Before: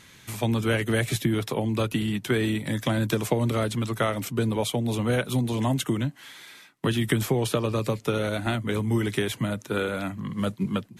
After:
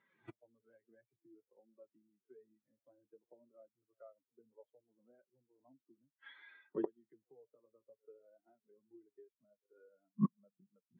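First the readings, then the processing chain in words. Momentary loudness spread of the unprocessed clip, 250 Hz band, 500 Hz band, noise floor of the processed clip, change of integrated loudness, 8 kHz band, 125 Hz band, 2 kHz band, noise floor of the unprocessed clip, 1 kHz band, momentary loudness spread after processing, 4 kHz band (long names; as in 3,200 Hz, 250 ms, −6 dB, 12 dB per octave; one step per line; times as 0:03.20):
6 LU, −20.0 dB, −25.0 dB, below −85 dBFS, −14.5 dB, below −40 dB, −26.5 dB, −33.0 dB, −52 dBFS, −27.5 dB, 23 LU, −40.0 dB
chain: backwards echo 93 ms −17.5 dB
gate with flip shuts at −25 dBFS, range −29 dB
high-pass filter 620 Hz 12 dB per octave
spectral tilt −4.5 dB per octave
flanger 0.58 Hz, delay 5 ms, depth 3.2 ms, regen −41%
every bin expanded away from the loudest bin 2.5 to 1
level +9.5 dB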